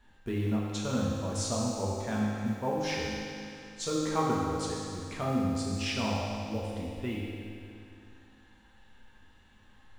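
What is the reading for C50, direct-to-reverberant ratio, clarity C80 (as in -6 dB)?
-1.5 dB, -5.5 dB, 0.0 dB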